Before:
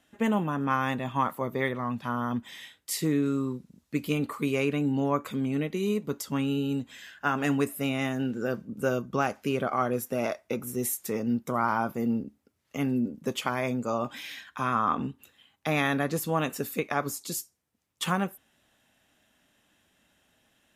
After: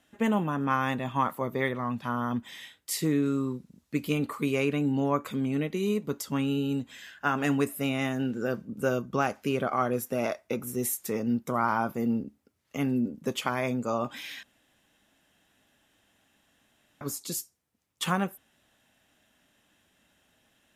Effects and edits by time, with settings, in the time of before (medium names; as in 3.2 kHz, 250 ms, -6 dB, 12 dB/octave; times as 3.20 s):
14.43–17.01 s: room tone